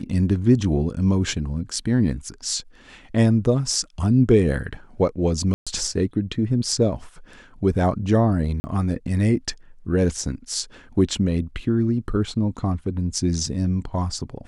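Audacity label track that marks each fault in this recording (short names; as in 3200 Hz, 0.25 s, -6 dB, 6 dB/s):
5.540000	5.670000	gap 0.126 s
8.600000	8.640000	gap 40 ms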